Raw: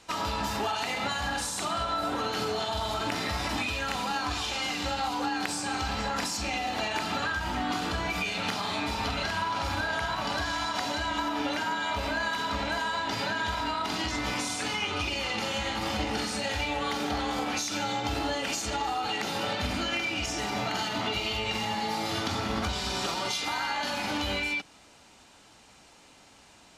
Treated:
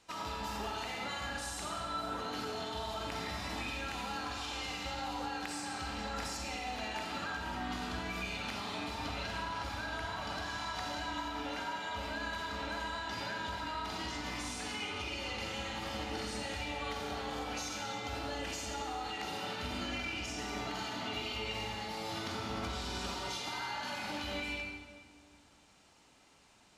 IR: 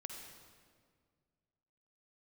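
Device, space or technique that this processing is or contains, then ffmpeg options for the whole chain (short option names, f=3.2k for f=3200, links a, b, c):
stairwell: -filter_complex "[1:a]atrim=start_sample=2205[a];[0:a][a]afir=irnorm=-1:irlink=0,volume=-5.5dB"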